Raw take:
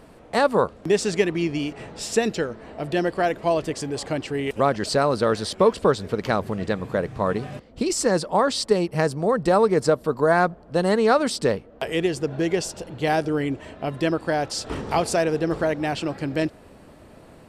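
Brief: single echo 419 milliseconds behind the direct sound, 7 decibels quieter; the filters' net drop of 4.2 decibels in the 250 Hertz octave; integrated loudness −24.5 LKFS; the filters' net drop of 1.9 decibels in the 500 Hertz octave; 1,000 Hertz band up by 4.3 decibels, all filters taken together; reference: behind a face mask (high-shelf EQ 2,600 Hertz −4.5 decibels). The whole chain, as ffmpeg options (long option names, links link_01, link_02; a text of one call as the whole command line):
ffmpeg -i in.wav -af "equalizer=frequency=250:width_type=o:gain=-5.5,equalizer=frequency=500:width_type=o:gain=-3,equalizer=frequency=1000:width_type=o:gain=8,highshelf=frequency=2600:gain=-4.5,aecho=1:1:419:0.447,volume=-1.5dB" out.wav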